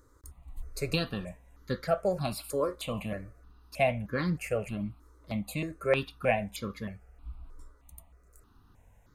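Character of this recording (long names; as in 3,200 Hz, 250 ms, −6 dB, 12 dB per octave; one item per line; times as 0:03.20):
notches that jump at a steady rate 3.2 Hz 720–2,600 Hz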